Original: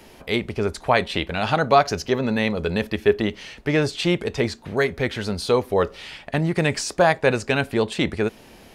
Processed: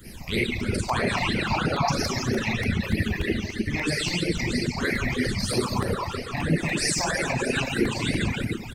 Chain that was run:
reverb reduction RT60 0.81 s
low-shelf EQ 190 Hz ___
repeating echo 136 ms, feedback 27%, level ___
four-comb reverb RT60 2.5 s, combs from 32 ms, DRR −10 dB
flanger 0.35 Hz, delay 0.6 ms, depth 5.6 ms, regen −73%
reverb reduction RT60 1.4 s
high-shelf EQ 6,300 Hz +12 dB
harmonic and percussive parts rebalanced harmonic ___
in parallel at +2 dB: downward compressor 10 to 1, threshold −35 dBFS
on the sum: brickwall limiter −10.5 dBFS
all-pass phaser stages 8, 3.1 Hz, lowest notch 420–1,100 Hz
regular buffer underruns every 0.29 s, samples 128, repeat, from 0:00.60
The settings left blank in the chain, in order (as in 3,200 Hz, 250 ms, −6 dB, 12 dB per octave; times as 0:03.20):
+9.5 dB, −7 dB, −15 dB